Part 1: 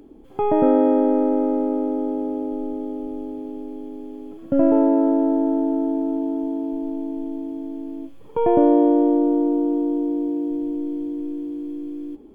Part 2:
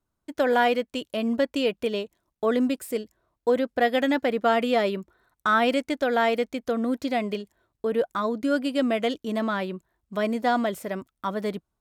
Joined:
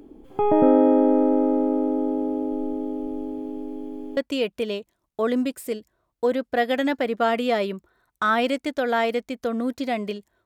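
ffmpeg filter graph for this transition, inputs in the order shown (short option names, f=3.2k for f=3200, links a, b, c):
-filter_complex "[0:a]apad=whole_dur=10.45,atrim=end=10.45,atrim=end=4.172[a];[1:a]atrim=start=1.408:end=7.69[b];[a][b]acrossfade=d=0.004:c1=hsin:c2=hsin"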